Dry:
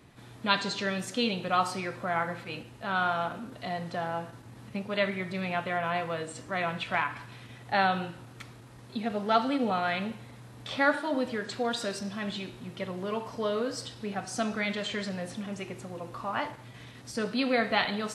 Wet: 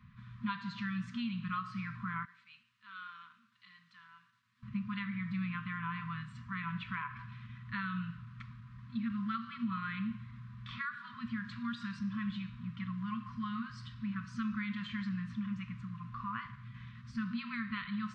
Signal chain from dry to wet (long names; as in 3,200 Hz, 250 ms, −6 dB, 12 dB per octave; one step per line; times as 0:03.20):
0:02.25–0:04.63: first difference
brick-wall band-stop 240–970 Hz
downward compressor 4 to 1, threshold −32 dBFS, peak gain reduction 11 dB
head-to-tape spacing loss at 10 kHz 37 dB
level +1.5 dB